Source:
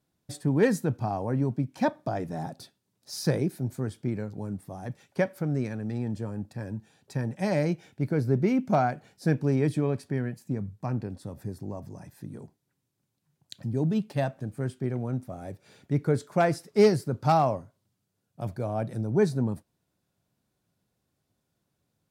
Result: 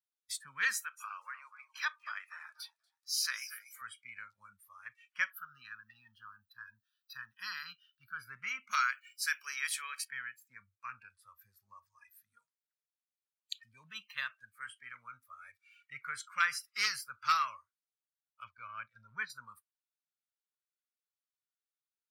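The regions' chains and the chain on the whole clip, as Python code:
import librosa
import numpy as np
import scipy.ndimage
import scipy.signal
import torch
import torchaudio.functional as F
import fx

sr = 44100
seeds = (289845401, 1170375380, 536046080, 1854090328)

y = fx.chain(x, sr, fx.highpass(hz=690.0, slope=12),
    fx.echo_warbled(ms=241, feedback_pct=39, rate_hz=2.8, cents=88, wet_db=-12.5), at=(0.73, 3.82))
y = fx.chain(y, sr, fx.high_shelf(hz=10000.0, db=8.0),
    fx.fixed_phaser(hz=2200.0, stages=6), at=(5.3, 8.2))
y = fx.chain(y, sr, fx.highpass(hz=140.0, slope=12),
    fx.tilt_eq(slope=3.0), at=(8.71, 10.05))
y = fx.chain(y, sr, fx.transient(attack_db=-1, sustain_db=-10),
    fx.lowpass(hz=5200.0, slope=24),
    fx.low_shelf(hz=290.0, db=5.0), at=(18.44, 19.3))
y = scipy.signal.sosfilt(scipy.signal.ellip(4, 1.0, 40, 1200.0, 'highpass', fs=sr, output='sos'), y)
y = fx.noise_reduce_blind(y, sr, reduce_db=22)
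y = F.gain(torch.from_numpy(y), 4.5).numpy()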